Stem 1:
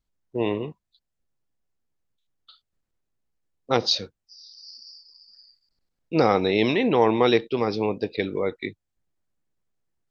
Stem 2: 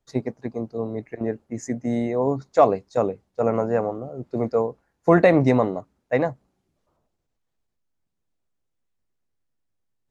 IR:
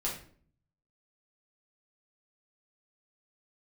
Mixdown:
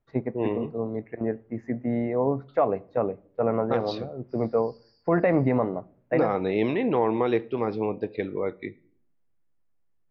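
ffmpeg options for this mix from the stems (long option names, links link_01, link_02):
-filter_complex "[0:a]lowpass=1900,volume=-3.5dB,asplit=2[link_01][link_02];[link_02]volume=-19.5dB[link_03];[1:a]lowpass=frequency=2600:width=0.5412,lowpass=frequency=2600:width=1.3066,volume=-2.5dB,asplit=2[link_04][link_05];[link_05]volume=-22dB[link_06];[2:a]atrim=start_sample=2205[link_07];[link_03][link_06]amix=inputs=2:normalize=0[link_08];[link_08][link_07]afir=irnorm=-1:irlink=0[link_09];[link_01][link_04][link_09]amix=inputs=3:normalize=0,alimiter=limit=-12dB:level=0:latency=1:release=128"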